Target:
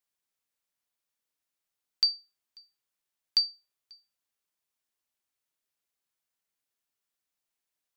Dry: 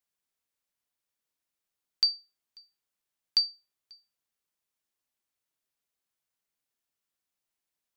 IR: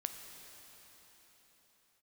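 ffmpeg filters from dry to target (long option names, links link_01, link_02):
-af "lowshelf=frequency=480:gain=-3"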